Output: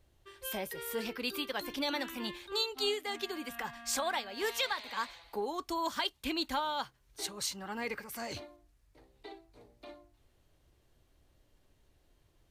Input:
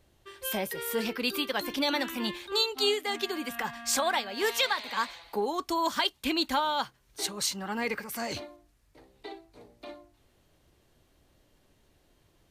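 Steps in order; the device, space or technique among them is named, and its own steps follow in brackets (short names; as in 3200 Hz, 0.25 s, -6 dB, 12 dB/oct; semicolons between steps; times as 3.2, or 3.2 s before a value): low shelf boost with a cut just above (low shelf 98 Hz +7.5 dB; bell 200 Hz -3.5 dB 0.63 oct); gain -6 dB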